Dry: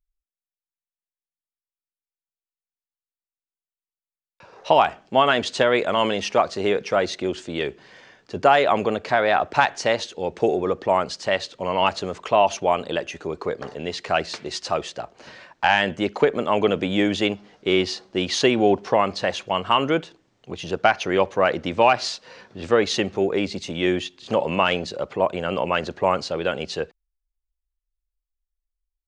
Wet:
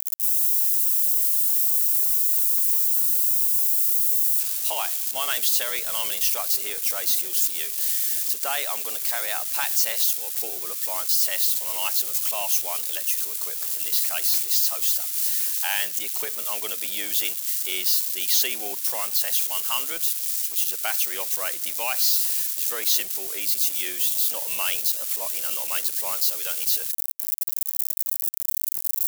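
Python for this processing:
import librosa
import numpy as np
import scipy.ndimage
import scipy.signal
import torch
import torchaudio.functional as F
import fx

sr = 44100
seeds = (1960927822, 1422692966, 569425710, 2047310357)

y = x + 0.5 * 10.0 ** (-19.5 / 20.0) * np.diff(np.sign(x), prepend=np.sign(x[:1]))
y = np.diff(y, prepend=0.0)
y = y * 10.0 ** (3.0 / 20.0)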